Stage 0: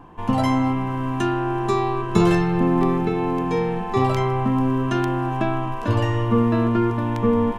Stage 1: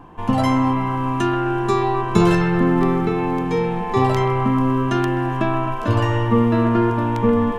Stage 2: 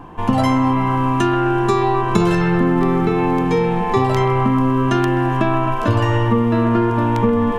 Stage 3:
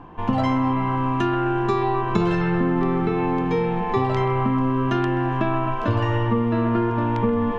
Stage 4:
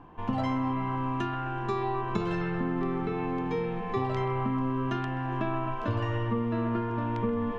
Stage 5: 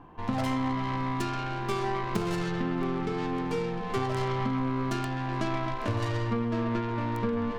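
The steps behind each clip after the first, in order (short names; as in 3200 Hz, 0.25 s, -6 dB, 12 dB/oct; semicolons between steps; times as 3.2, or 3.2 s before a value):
band-limited delay 0.129 s, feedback 58%, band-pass 1200 Hz, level -5 dB; gain +2 dB
compressor 4:1, threshold -18 dBFS, peak gain reduction 7.5 dB; gain +5.5 dB
LPF 4200 Hz 12 dB/oct; gain -5 dB
de-hum 175.4 Hz, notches 7; gain -8 dB
tracing distortion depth 0.48 ms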